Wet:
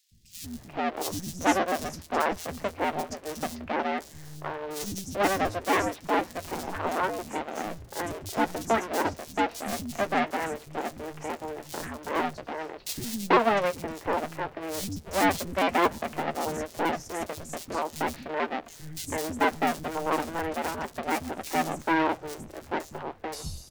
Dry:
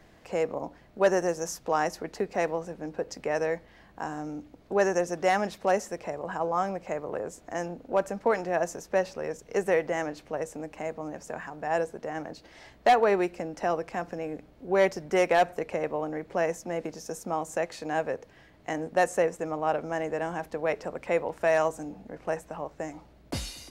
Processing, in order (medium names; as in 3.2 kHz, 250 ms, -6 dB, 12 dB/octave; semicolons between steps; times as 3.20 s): cycle switcher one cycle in 2, inverted; doubling 13 ms -12 dB; three bands offset in time highs, lows, mids 110/440 ms, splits 210/3800 Hz